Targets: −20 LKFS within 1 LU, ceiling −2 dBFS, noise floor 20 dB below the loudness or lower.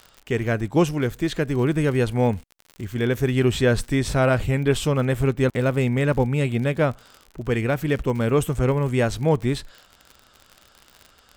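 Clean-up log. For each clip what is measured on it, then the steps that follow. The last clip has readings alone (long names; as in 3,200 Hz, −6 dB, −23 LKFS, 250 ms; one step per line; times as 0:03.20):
crackle rate 56 per second; integrated loudness −22.5 LKFS; sample peak −6.0 dBFS; target loudness −20.0 LKFS
→ click removal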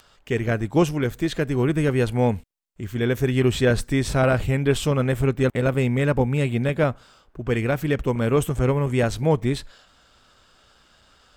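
crackle rate 1.8 per second; integrated loudness −22.5 LKFS; sample peak −6.0 dBFS; target loudness −20.0 LKFS
→ level +2.5 dB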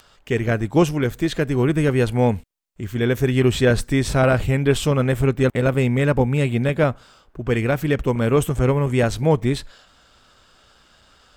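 integrated loudness −20.0 LKFS; sample peak −3.5 dBFS; background noise floor −55 dBFS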